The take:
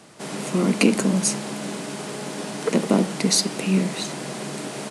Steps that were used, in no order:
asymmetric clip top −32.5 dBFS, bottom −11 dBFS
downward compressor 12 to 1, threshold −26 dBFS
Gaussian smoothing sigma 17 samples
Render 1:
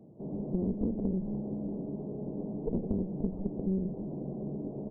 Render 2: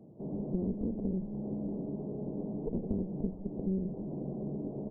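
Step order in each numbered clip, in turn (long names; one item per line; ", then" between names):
asymmetric clip, then Gaussian smoothing, then downward compressor
asymmetric clip, then downward compressor, then Gaussian smoothing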